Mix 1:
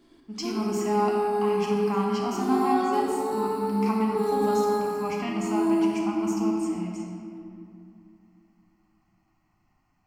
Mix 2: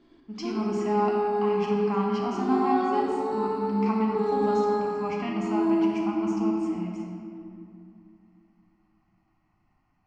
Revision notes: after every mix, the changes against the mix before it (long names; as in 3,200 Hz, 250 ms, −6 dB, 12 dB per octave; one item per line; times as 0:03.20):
master: add high-frequency loss of the air 140 metres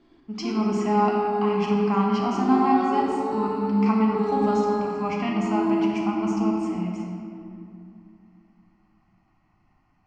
speech +5.0 dB